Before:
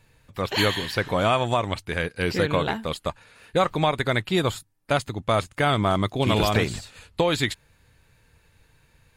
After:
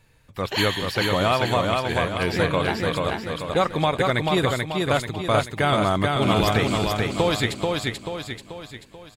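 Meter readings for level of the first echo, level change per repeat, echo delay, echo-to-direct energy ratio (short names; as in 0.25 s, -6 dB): -3.0 dB, -6.5 dB, 0.436 s, -2.0 dB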